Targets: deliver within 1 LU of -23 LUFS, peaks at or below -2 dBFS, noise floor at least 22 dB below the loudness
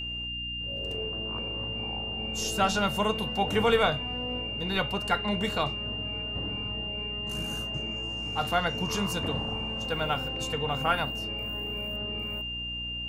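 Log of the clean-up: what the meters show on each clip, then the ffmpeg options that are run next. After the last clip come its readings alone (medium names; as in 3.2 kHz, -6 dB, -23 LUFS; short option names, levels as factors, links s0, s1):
hum 60 Hz; highest harmonic 300 Hz; hum level -39 dBFS; steady tone 2.8 kHz; tone level -33 dBFS; loudness -29.5 LUFS; peak level -11.0 dBFS; loudness target -23.0 LUFS
-> -af "bandreject=f=60:t=h:w=4,bandreject=f=120:t=h:w=4,bandreject=f=180:t=h:w=4,bandreject=f=240:t=h:w=4,bandreject=f=300:t=h:w=4"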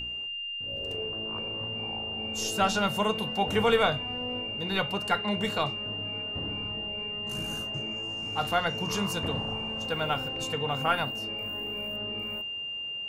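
hum not found; steady tone 2.8 kHz; tone level -33 dBFS
-> -af "bandreject=f=2800:w=30"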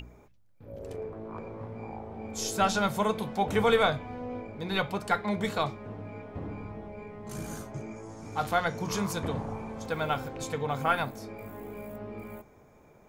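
steady tone not found; loudness -31.5 LUFS; peak level -12.0 dBFS; loudness target -23.0 LUFS
-> -af "volume=2.66"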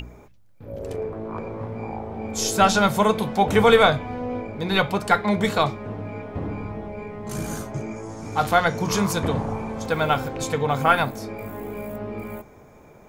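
loudness -23.0 LUFS; peak level -3.5 dBFS; noise floor -49 dBFS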